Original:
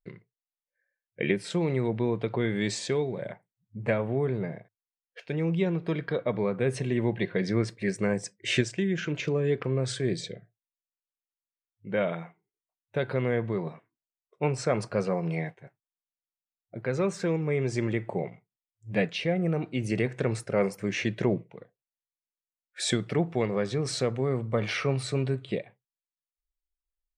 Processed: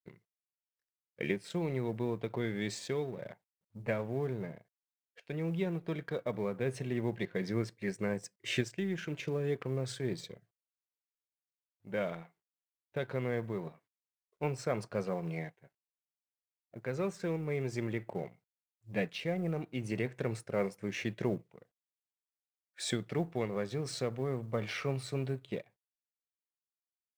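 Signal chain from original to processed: companding laws mixed up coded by A; trim -6.5 dB

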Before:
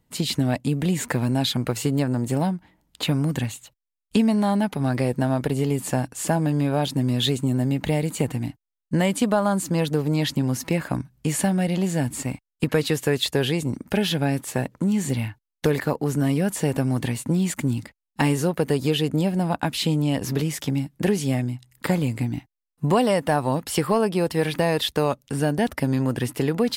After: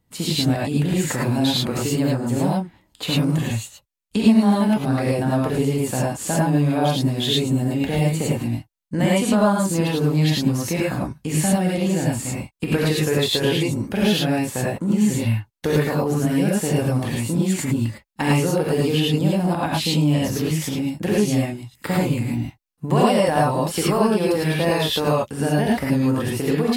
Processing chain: gated-style reverb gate 130 ms rising, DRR -5 dB; trim -3 dB

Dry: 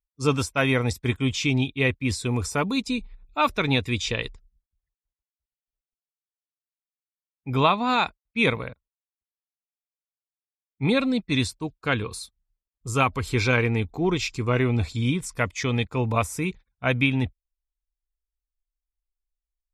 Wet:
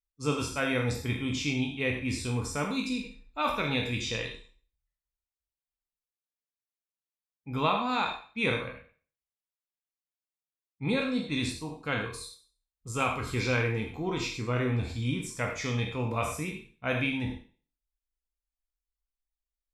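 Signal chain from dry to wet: spectral sustain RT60 0.41 s; gated-style reverb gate 120 ms flat, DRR 4 dB; trim -9 dB

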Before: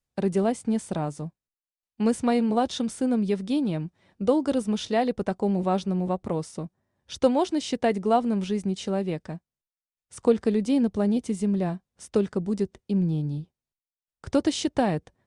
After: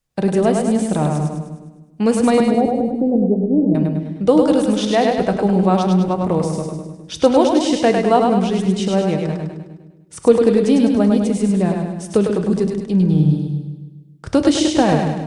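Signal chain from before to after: 2.40–3.75 s: steep low-pass 740 Hz 48 dB/octave; two-band feedback delay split 410 Hz, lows 139 ms, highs 102 ms, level -3.5 dB; simulated room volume 590 m³, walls furnished, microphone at 0.59 m; trim +7.5 dB

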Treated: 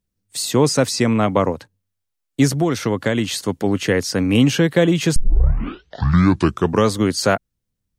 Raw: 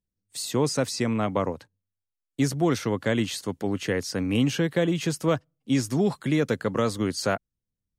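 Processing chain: 2.52–3.40 s: compression, threshold -23 dBFS, peak gain reduction 5.5 dB; 5.16 s: tape start 1.78 s; trim +8.5 dB

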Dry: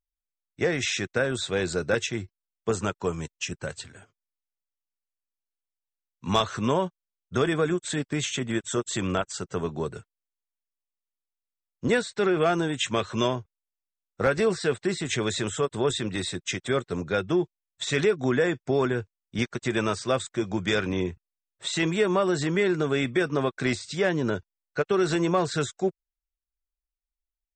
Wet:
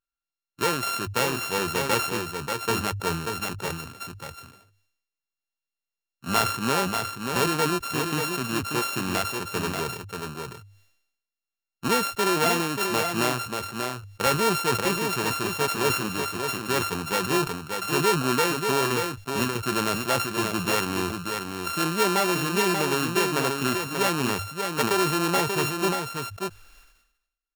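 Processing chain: sorted samples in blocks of 32 samples; bass shelf 120 Hz -6 dB; hum notches 50/100 Hz; on a send: delay 586 ms -5.5 dB; on the sum: decay stretcher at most 68 dB/s

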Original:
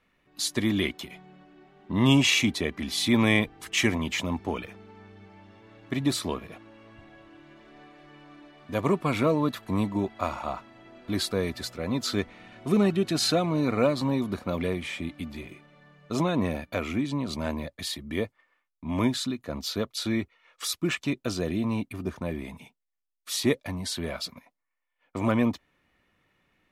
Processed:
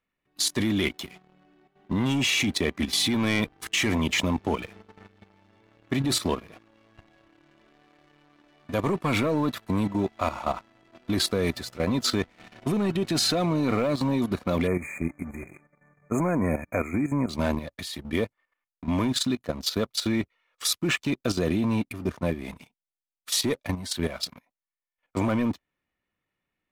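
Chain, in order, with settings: waveshaping leveller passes 2; level held to a coarse grid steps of 12 dB; 14.67–17.29 s: brick-wall FIR band-stop 2.5–6.3 kHz

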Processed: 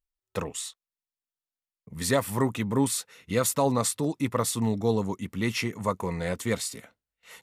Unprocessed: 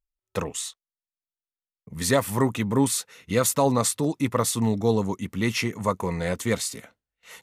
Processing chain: band-stop 6.3 kHz, Q 19; trim -3 dB

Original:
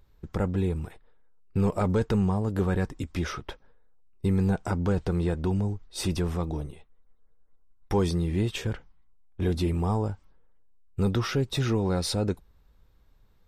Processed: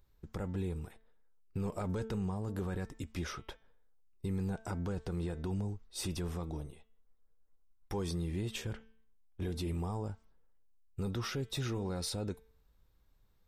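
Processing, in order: treble shelf 5.2 kHz +6.5 dB; de-hum 222.4 Hz, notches 17; peak limiter -19.5 dBFS, peak gain reduction 5 dB; trim -8.5 dB

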